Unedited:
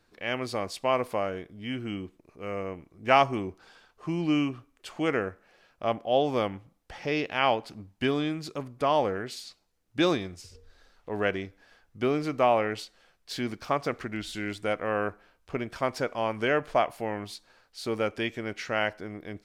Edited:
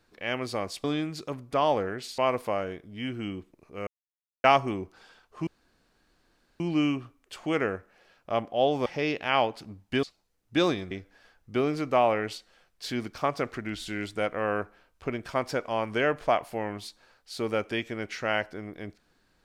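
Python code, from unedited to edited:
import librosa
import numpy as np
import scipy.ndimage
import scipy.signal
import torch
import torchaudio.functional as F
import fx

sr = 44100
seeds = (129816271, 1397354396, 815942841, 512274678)

y = fx.edit(x, sr, fx.silence(start_s=2.53, length_s=0.57),
    fx.insert_room_tone(at_s=4.13, length_s=1.13),
    fx.cut(start_s=6.39, length_s=0.56),
    fx.move(start_s=8.12, length_s=1.34, to_s=0.84),
    fx.cut(start_s=10.34, length_s=1.04), tone=tone)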